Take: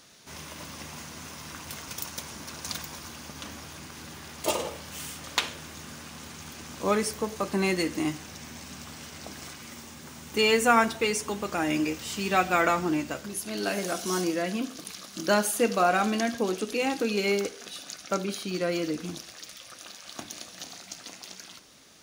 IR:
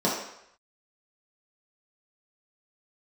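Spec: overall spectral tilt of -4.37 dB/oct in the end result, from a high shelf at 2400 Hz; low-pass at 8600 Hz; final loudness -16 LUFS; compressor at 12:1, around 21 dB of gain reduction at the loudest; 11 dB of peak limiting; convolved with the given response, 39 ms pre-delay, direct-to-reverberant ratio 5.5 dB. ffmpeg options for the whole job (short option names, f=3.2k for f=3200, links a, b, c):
-filter_complex "[0:a]lowpass=8.6k,highshelf=f=2.4k:g=-6.5,acompressor=threshold=-40dB:ratio=12,alimiter=level_in=10.5dB:limit=-24dB:level=0:latency=1,volume=-10.5dB,asplit=2[a][b];[1:a]atrim=start_sample=2205,adelay=39[c];[b][c]afir=irnorm=-1:irlink=0,volume=-19.5dB[d];[a][d]amix=inputs=2:normalize=0,volume=27.5dB"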